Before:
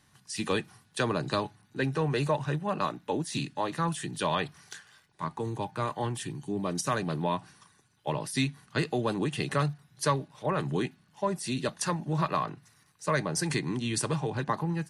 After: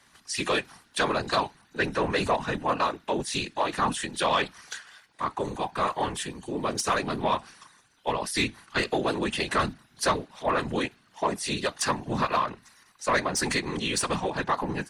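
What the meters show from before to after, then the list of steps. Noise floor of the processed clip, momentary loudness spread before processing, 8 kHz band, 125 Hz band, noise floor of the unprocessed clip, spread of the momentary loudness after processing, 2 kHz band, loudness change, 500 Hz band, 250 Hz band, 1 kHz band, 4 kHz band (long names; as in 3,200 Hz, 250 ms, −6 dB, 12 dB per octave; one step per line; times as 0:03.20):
−62 dBFS, 8 LU, +3.5 dB, −5.5 dB, −65 dBFS, 7 LU, +6.5 dB, +3.0 dB, +3.0 dB, 0.0 dB, +5.0 dB, +6.0 dB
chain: random phases in short frames
mid-hump overdrive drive 13 dB, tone 6,300 Hz, clips at −13 dBFS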